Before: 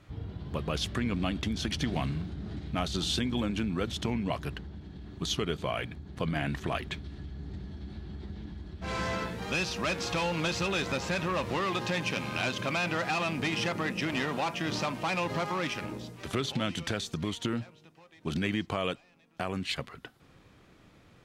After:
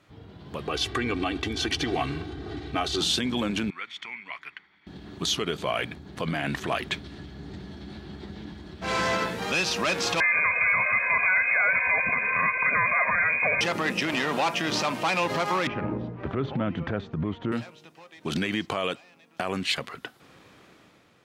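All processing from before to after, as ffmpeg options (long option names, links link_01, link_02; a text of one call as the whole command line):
ffmpeg -i in.wav -filter_complex "[0:a]asettb=1/sr,asplit=3[link_01][link_02][link_03];[link_01]atrim=end=0.674[link_04];[link_02]atrim=start=0.67:end=3.01,asetpts=PTS-STARTPTS,afade=type=in:duration=0.004:curve=qsin,afade=type=out:start_time=2.336:duration=0.004:curve=qsin,highshelf=frequency=5600:gain=-8.5,aecho=1:1:2.6:0.8,atrim=end_sample=103194[link_05];[link_03]atrim=start=3.006[link_06];[link_04][link_05]acrossfade=duration=0.004:curve1=hsin:curve2=qsin[link_07];[link_07][link_06]acrossfade=duration=0.004:curve1=qsin:curve2=hsin,asettb=1/sr,asplit=3[link_08][link_09][link_10];[link_08]atrim=end=3.704[link_11];[link_09]atrim=start=3.7:end=4.87,asetpts=PTS-STARTPTS,afade=type=in:duration=0.004:curve=qsin,afade=type=out:start_time=1.166:duration=0.004:curve=qsin,bandpass=frequency=2000:width_type=q:width=3.5,aecho=1:1:0.9:0.43,atrim=end_sample=51597[link_12];[link_10]atrim=start=4.866[link_13];[link_11][link_12]acrossfade=duration=0.004:curve1=hsin:curve2=qsin[link_14];[link_14][link_13]acrossfade=duration=0.004:curve1=qsin:curve2=hsin,asettb=1/sr,asplit=3[link_15][link_16][link_17];[link_15]atrim=end=10.204[link_18];[link_16]atrim=start=10.2:end=13.61,asetpts=PTS-STARTPTS,afade=type=in:duration=0.004:curve=qsin,afade=type=out:start_time=3.406:duration=0.004:curve=qsin,aecho=1:1:2:0.99,atrim=end_sample=150381,lowpass=frequency=2200:width_type=q:width=0.5098,lowpass=frequency=2200:width_type=q:width=0.6013,lowpass=frequency=2200:width_type=q:width=0.9,lowpass=frequency=2200:width_type=q:width=2.563,afreqshift=-2600[link_19];[link_17]atrim=start=13.606[link_20];[link_18][link_19]acrossfade=duration=0.004:curve1=hsin:curve2=qsin[link_21];[link_21][link_20]acrossfade=duration=0.004:curve1=qsin:curve2=hsin,asettb=1/sr,asplit=3[link_22][link_23][link_24];[link_22]atrim=end=15.674[link_25];[link_23]atrim=start=15.67:end=17.52,asetpts=PTS-STARTPTS,afade=type=in:duration=0.004:curve=qsin,afade=type=out:start_time=1.846:duration=0.004:curve=qsin,lowpass=1500,aemphasis=mode=reproduction:type=bsi[link_26];[link_24]atrim=start=17.516[link_27];[link_25][link_26]acrossfade=duration=0.004:curve1=hsin:curve2=qsin[link_28];[link_28][link_27]acrossfade=duration=0.004:curve1=qsin:curve2=hsin,alimiter=limit=-22.5dB:level=0:latency=1,dynaudnorm=framelen=110:gausssize=11:maxgain=8.5dB,highpass=frequency=300:poles=1" out.wav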